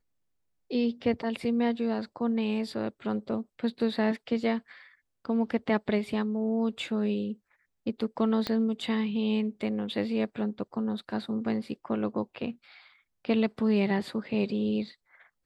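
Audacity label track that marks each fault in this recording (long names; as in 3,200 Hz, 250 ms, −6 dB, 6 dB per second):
8.470000	8.470000	click −16 dBFS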